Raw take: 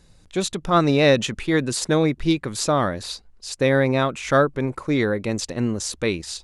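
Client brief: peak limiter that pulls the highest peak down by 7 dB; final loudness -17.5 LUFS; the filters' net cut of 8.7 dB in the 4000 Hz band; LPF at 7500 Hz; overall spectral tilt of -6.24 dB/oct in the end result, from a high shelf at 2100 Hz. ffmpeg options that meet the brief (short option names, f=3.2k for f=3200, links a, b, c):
-af "lowpass=7.5k,highshelf=f=2.1k:g=-6,equalizer=f=4k:t=o:g=-4.5,volume=7dB,alimiter=limit=-5.5dB:level=0:latency=1"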